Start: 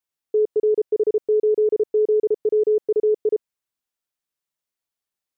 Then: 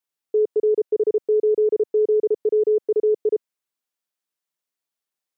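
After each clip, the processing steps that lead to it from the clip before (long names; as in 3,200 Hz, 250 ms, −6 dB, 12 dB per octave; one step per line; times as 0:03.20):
high-pass filter 160 Hz 12 dB per octave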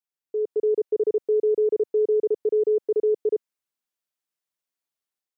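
automatic gain control gain up to 6.5 dB
level −9 dB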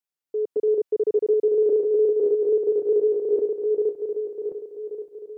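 feedback delay that plays each chunk backwards 565 ms, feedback 54%, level −1 dB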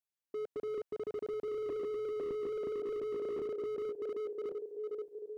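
slew-rate limiting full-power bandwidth 14 Hz
level −6.5 dB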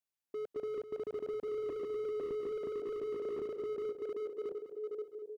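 single-tap delay 204 ms −11.5 dB
level −1 dB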